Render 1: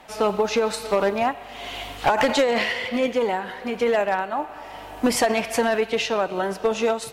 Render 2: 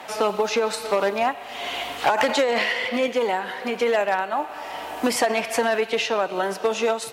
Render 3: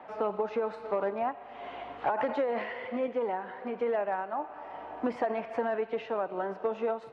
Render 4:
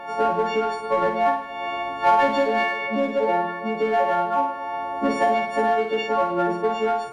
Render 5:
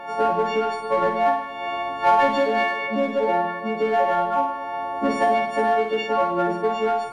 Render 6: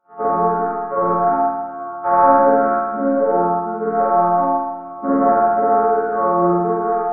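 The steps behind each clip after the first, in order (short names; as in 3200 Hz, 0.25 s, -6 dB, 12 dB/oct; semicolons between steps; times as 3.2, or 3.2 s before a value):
HPF 340 Hz 6 dB/oct; three-band squash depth 40%; gain +1 dB
LPF 1300 Hz 12 dB/oct; gain -8 dB
frequency quantiser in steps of 4 st; in parallel at -5 dB: hard clip -27 dBFS, distortion -12 dB; on the sum: flutter echo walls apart 8.8 m, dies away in 0.63 s; gain +5.5 dB
Schroeder reverb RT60 1.1 s, combs from 30 ms, DRR 14 dB
nonlinear frequency compression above 1200 Hz 4:1; expander -20 dBFS; spring tank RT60 1.2 s, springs 40/51 ms, chirp 75 ms, DRR -5.5 dB; gain -2.5 dB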